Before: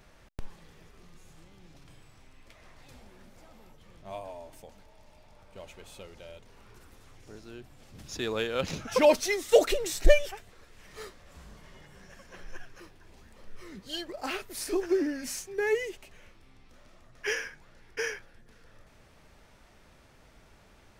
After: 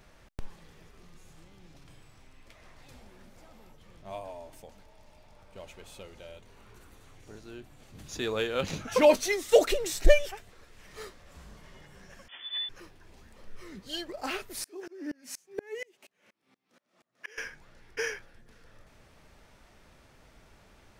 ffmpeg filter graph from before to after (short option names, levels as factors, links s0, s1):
-filter_complex "[0:a]asettb=1/sr,asplit=3[s0][s1][s2];[s0]atrim=end=6.034[s3];[s1]atrim=start=6.03:end=9.33,asetpts=PTS-STARTPTS,afade=t=in:d=0.004:c=qsin,afade=t=out:st=3.296:d=0.004:c=qsin,bandreject=f=5200:w=11,asplit=2[s4][s5];[s5]adelay=20,volume=0.251[s6];[s4][s6]amix=inputs=2:normalize=0,atrim=end_sample=145530[s7];[s2]atrim=start=9.326[s8];[s3][s7]acrossfade=d=0.004:c1=hsin:c2=qsin[s9];[s9][s8]acrossfade=d=0.004:c1=qsin:c2=hsin,asettb=1/sr,asplit=3[s10][s11][s12];[s10]atrim=end=12.284[s13];[s11]atrim=start=12.28:end=12.69,asetpts=PTS-STARTPTS,afade=t=in:d=0.004:c=qsin,afade=t=out:st=0.406:d=0.004:c=qsin,asplit=2[s14][s15];[s15]adelay=17,volume=0.473[s16];[s14][s16]amix=inputs=2:normalize=0,atrim=end_sample=18081,lowpass=f=3000:t=q:w=0.5098,lowpass=f=3000:t=q:w=0.6013,lowpass=f=3000:t=q:w=0.9,lowpass=f=3000:t=q:w=2.563,afreqshift=-3500[s17];[s12]atrim=start=12.686[s18];[s13][s17]acrossfade=d=0.004:c1=hsin:c2=qsin[s19];[s19][s18]acrossfade=d=0.004:c1=qsin:c2=hsin,asettb=1/sr,asplit=3[s20][s21][s22];[s20]atrim=end=14.644[s23];[s21]atrim=start=14.64:end=17.38,asetpts=PTS-STARTPTS,afade=t=in:d=0.004:c=qsin,afade=t=out:st=2.736:d=0.004:c=qsin,highpass=f=170:w=0.5412,highpass=f=170:w=1.3066,aeval=exprs='val(0)*pow(10,-32*if(lt(mod(-4.2*n/s,1),2*abs(-4.2)/1000),1-mod(-4.2*n/s,1)/(2*abs(-4.2)/1000),(mod(-4.2*n/s,1)-2*abs(-4.2)/1000)/(1-2*abs(-4.2)/1000))/20)':c=same[s24];[s22]atrim=start=17.376[s25];[s23][s24]acrossfade=d=0.004:c1=hsin:c2=qsin[s26];[s26][s25]acrossfade=d=0.004:c1=qsin:c2=hsin"